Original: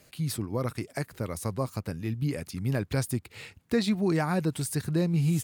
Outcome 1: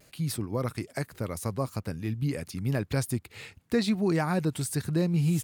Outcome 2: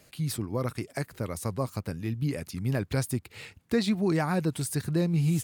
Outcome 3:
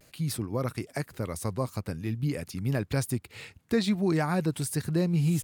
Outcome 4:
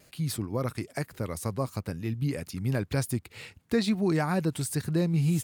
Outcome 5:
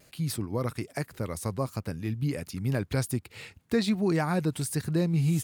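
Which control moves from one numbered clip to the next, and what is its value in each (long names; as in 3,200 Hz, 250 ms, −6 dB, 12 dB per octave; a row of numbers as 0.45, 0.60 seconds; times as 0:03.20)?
pitch vibrato, speed: 0.81, 7.7, 0.45, 2.1, 1.3 Hertz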